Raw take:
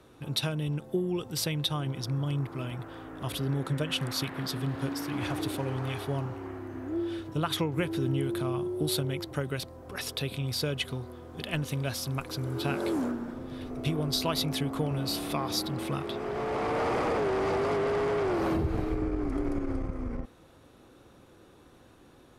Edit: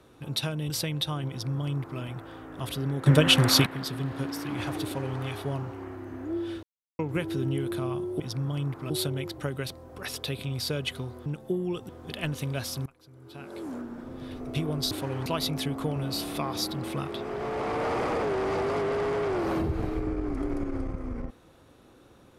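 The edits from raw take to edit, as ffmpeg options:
ffmpeg -i in.wav -filter_complex "[0:a]asplit=13[link_01][link_02][link_03][link_04][link_05][link_06][link_07][link_08][link_09][link_10][link_11][link_12][link_13];[link_01]atrim=end=0.702[link_14];[link_02]atrim=start=1.328:end=3.692[link_15];[link_03]atrim=start=3.688:end=4.292,asetpts=PTS-STARTPTS,volume=11.5dB[link_16];[link_04]atrim=start=4.288:end=7.26,asetpts=PTS-STARTPTS,afade=type=out:start_time=2.968:duration=0.004:curve=hsin[link_17];[link_05]atrim=start=7.26:end=7.62,asetpts=PTS-STARTPTS,volume=0[link_18];[link_06]atrim=start=7.62:end=8.832,asetpts=PTS-STARTPTS,afade=type=in:duration=0.004:curve=hsin[link_19];[link_07]atrim=start=1.928:end=2.632[link_20];[link_08]atrim=start=8.828:end=11.192[link_21];[link_09]atrim=start=0.698:end=1.332[link_22];[link_10]atrim=start=11.188:end=12.16,asetpts=PTS-STARTPTS,afade=type=out:start_time=0.968:duration=0.004:curve=hsin:silence=0.0707946[link_23];[link_11]atrim=start=12.16:end=14.212,asetpts=PTS-STARTPTS,afade=type=in:duration=1.33:curve=qua:silence=0.0707946[link_24];[link_12]atrim=start=5.468:end=5.822[link_25];[link_13]atrim=start=14.208[link_26];[link_14][link_15]acrossfade=duration=0.004:curve1=hsin:curve2=hsin[link_27];[link_27][link_16]acrossfade=duration=0.004:curve1=hsin:curve2=hsin[link_28];[link_17][link_18][link_19]concat=n=3:v=0:a=1[link_29];[link_28][link_29]acrossfade=duration=0.004:curve1=hsin:curve2=hsin[link_30];[link_30][link_20]acrossfade=duration=0.004:curve1=hsin:curve2=hsin[link_31];[link_31][link_21]acrossfade=duration=0.004:curve1=hsin:curve2=hsin[link_32];[link_32][link_22]acrossfade=duration=0.004:curve1=hsin:curve2=hsin[link_33];[link_23][link_24]concat=n=2:v=0:a=1[link_34];[link_33][link_34]acrossfade=duration=0.004:curve1=hsin:curve2=hsin[link_35];[link_35][link_25]acrossfade=duration=0.004:curve1=hsin:curve2=hsin[link_36];[link_36][link_26]acrossfade=duration=0.004:curve1=hsin:curve2=hsin" out.wav

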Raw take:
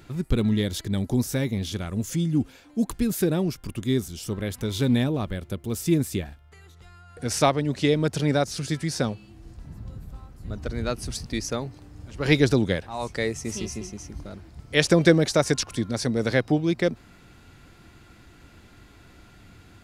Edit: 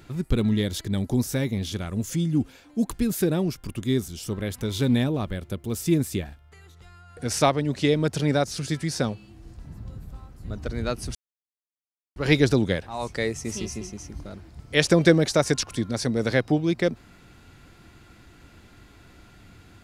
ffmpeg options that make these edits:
ffmpeg -i in.wav -filter_complex "[0:a]asplit=3[link_01][link_02][link_03];[link_01]atrim=end=11.15,asetpts=PTS-STARTPTS,afade=type=out:start_time=11.146:duration=0.004:curve=hsin[link_04];[link_02]atrim=start=11.15:end=12.16,asetpts=PTS-STARTPTS,volume=0[link_05];[link_03]atrim=start=12.16,asetpts=PTS-STARTPTS,afade=type=in:duration=0.004:curve=hsin[link_06];[link_04][link_05][link_06]concat=n=3:v=0:a=1" out.wav

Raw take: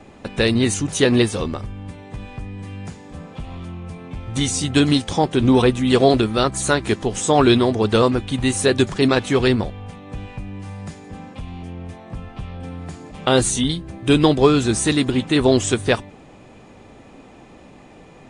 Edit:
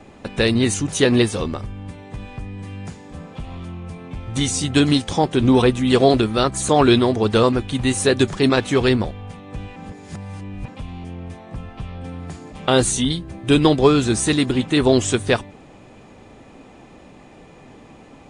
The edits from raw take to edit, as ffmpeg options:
ffmpeg -i in.wav -filter_complex "[0:a]asplit=4[link_01][link_02][link_03][link_04];[link_01]atrim=end=6.692[link_05];[link_02]atrim=start=7.278:end=10.352[link_06];[link_03]atrim=start=10.348:end=11.272,asetpts=PTS-STARTPTS,areverse[link_07];[link_04]atrim=start=11.268[link_08];[link_05][link_06]acrossfade=duration=0.004:curve1=hsin:curve2=hsin[link_09];[link_09][link_07]acrossfade=duration=0.004:curve1=hsin:curve2=hsin[link_10];[link_10][link_08]acrossfade=duration=0.004:curve1=hsin:curve2=hsin" out.wav

